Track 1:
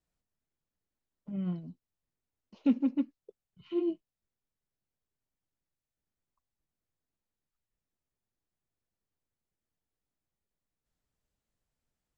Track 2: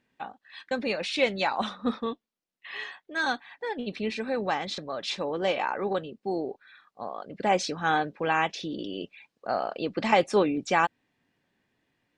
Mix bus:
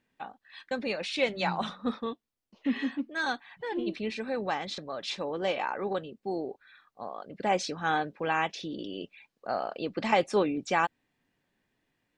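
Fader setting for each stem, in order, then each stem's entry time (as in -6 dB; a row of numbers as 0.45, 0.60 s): -3.0, -3.0 dB; 0.00, 0.00 s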